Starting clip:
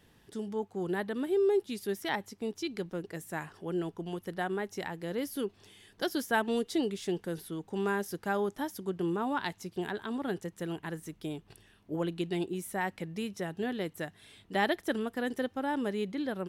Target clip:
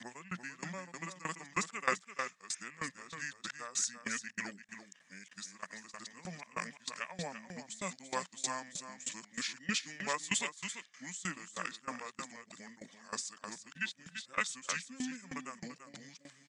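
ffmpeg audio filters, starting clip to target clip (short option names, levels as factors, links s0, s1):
-af "areverse,aderivative,asetrate=28595,aresample=44100,atempo=1.54221,highpass=f=140:w=0.5412,highpass=f=140:w=1.3066,equalizer=f=180:t=q:w=4:g=10,equalizer=f=340:t=q:w=4:g=-4,equalizer=f=1700:t=q:w=4:g=9,lowpass=f=8000:w=0.5412,lowpass=f=8000:w=1.3066,aecho=1:1:339:0.398,aeval=exprs='val(0)*pow(10,-20*if(lt(mod(3.2*n/s,1),2*abs(3.2)/1000),1-mod(3.2*n/s,1)/(2*abs(3.2)/1000),(mod(3.2*n/s,1)-2*abs(3.2)/1000)/(1-2*abs(3.2)/1000))/20)':c=same,volume=5.31"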